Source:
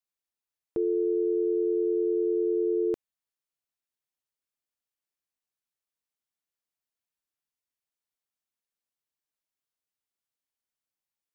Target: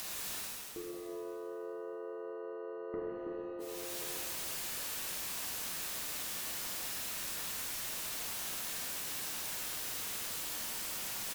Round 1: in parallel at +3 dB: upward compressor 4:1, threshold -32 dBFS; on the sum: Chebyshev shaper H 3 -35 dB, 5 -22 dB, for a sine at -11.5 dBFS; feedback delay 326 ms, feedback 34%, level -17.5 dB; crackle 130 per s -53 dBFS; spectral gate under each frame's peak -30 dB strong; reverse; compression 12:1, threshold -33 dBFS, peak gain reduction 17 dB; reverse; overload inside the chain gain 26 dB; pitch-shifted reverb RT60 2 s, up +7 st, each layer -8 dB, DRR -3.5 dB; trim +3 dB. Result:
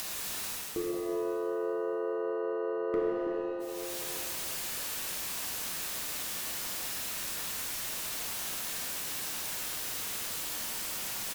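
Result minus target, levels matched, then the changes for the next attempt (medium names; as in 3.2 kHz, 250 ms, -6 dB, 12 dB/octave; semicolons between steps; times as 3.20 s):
compression: peak gain reduction -10 dB
change: compression 12:1, threshold -44 dBFS, peak gain reduction 27 dB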